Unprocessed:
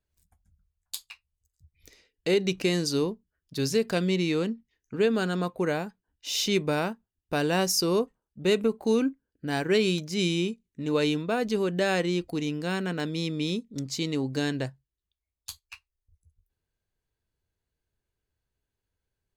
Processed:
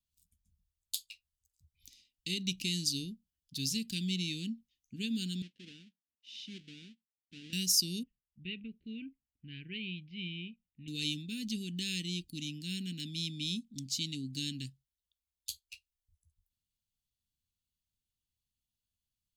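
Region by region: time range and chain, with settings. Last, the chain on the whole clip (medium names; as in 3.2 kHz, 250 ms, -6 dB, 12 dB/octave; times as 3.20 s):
5.42–7.53 s: square wave that keeps the level + band-pass filter 880 Hz, Q 1.8 + distance through air 82 m
8.03–10.88 s: steep low-pass 2.7 kHz + peaking EQ 250 Hz -10.5 dB 1.1 oct
whole clip: elliptic band-stop 240–3000 Hz, stop band 60 dB; bass shelf 320 Hz -9.5 dB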